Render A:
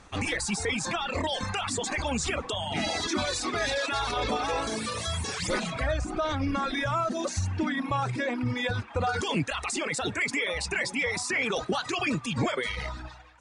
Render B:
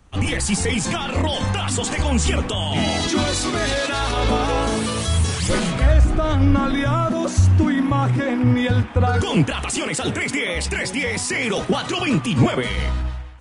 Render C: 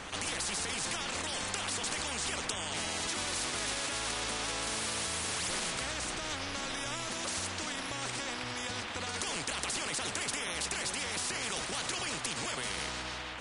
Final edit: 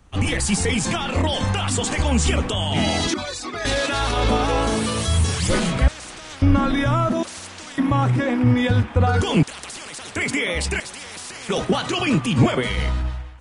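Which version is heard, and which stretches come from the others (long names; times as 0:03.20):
B
0:03.14–0:03.65: punch in from A
0:05.88–0:06.42: punch in from C
0:07.23–0:07.78: punch in from C
0:09.43–0:10.16: punch in from C
0:10.80–0:11.49: punch in from C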